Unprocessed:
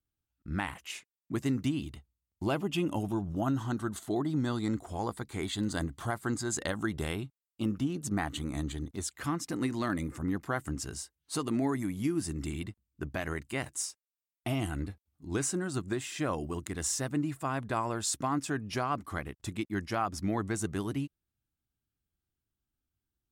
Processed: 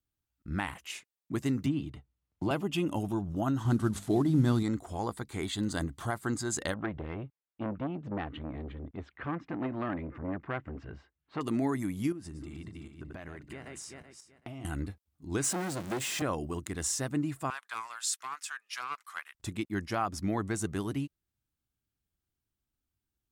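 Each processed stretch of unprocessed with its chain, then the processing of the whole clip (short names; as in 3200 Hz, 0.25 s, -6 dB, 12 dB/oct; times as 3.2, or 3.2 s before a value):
1.66–2.51 LPF 1900 Hz 6 dB/oct + comb 6.7 ms, depth 32% + three-band squash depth 40%
3.65–4.63 CVSD 64 kbps + low shelf 280 Hz +10.5 dB + notches 50/100/150/200/250 Hz
6.74–11.41 LPF 2500 Hz 24 dB/oct + core saturation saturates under 740 Hz
12.12–14.65 regenerating reverse delay 0.19 s, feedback 43%, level -8 dB + LPF 2700 Hz 6 dB/oct + compressor 8:1, threshold -39 dBFS
15.44–16.22 zero-crossing step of -33.5 dBFS + HPF 110 Hz 24 dB/oct + core saturation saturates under 1000 Hz
17.5–19.35 HPF 1200 Hz 24 dB/oct + Doppler distortion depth 0.21 ms
whole clip: dry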